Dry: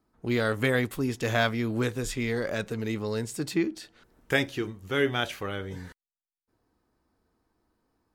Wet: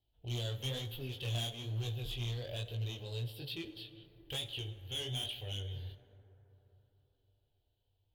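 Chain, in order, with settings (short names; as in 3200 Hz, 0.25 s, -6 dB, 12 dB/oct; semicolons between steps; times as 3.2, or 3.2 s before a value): EQ curve 120 Hz 0 dB, 200 Hz -23 dB, 740 Hz -3 dB, 2100 Hz -15 dB, 3100 Hz +11 dB, 8000 Hz -17 dB, 13000 Hz 0 dB; in parallel at -2 dB: compressor, threshold -34 dBFS, peak gain reduction 13.5 dB; on the sum: fixed phaser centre 2800 Hz, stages 4; hard clip -27.5 dBFS, distortion -8 dB; chorus 1.1 Hz, delay 18.5 ms, depth 6.9 ms; plate-style reverb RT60 3.9 s, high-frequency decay 0.3×, DRR 11 dB; gain -4.5 dB; Vorbis 96 kbps 48000 Hz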